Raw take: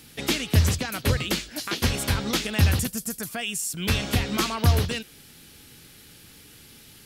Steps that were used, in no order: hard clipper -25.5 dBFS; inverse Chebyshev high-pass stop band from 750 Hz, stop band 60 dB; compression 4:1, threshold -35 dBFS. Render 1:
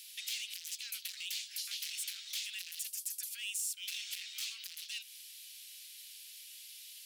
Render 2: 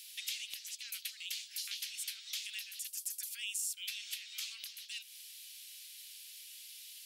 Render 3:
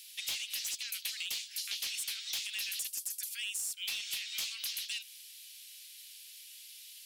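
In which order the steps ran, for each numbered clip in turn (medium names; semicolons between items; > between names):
hard clipper > compression > inverse Chebyshev high-pass; compression > inverse Chebyshev high-pass > hard clipper; inverse Chebyshev high-pass > hard clipper > compression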